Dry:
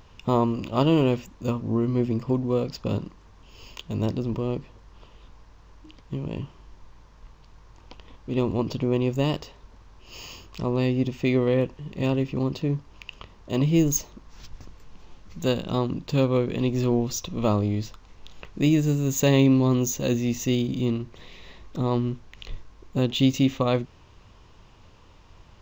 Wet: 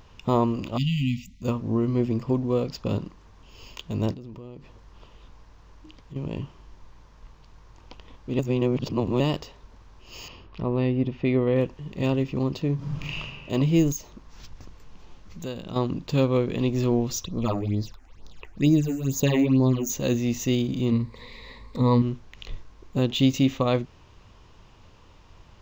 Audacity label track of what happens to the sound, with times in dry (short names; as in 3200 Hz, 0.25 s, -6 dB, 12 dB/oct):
0.770000	1.420000	spectral delete 270–1900 Hz
4.130000	6.160000	compressor 5:1, threshold -38 dBFS
8.390000	9.200000	reverse
10.280000	11.560000	air absorption 270 m
12.750000	13.200000	reverb throw, RT60 1.7 s, DRR -9.5 dB
13.920000	15.760000	compressor 2:1, threshold -36 dBFS
17.240000	19.900000	phaser stages 8, 2.2 Hz, lowest notch 130–2900 Hz
20.910000	22.020000	ripple EQ crests per octave 0.96, crest to trough 13 dB